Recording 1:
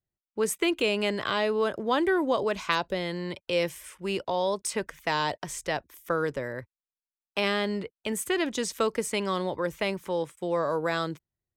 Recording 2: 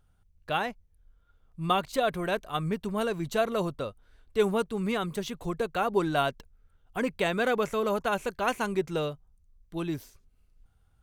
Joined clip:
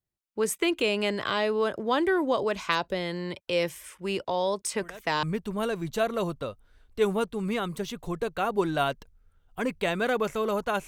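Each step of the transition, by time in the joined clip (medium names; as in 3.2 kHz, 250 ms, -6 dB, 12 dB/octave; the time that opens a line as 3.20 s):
recording 1
4.81 s: add recording 2 from 2.19 s 0.42 s -16 dB
5.23 s: go over to recording 2 from 2.61 s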